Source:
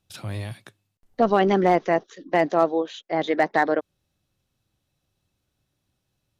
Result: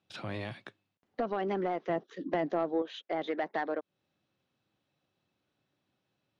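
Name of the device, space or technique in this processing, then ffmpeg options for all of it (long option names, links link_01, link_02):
AM radio: -filter_complex "[0:a]highpass=190,lowpass=3500,acompressor=threshold=-30dB:ratio=4,asoftclip=type=tanh:threshold=-22dB,asettb=1/sr,asplit=3[link_01][link_02][link_03];[link_01]atrim=end=1.894[link_04];[link_02]atrim=start=1.89:end=2.82,asetpts=PTS-STARTPTS,afade=type=in:duration=0.004:curve=qsin,afade=type=out:start_time=0.926:duration=0.004:curve=qsin,equalizer=frequency=120:width=0.46:gain=10.5[link_05];[link_03]atrim=start=2.816[link_06];[link_04][link_05]acrossfade=duration=0.004:curve1=hsin:curve2=qsin[link_07];[link_07][link_06]acrossfade=duration=0.004:curve1=qsin:curve2=hsin"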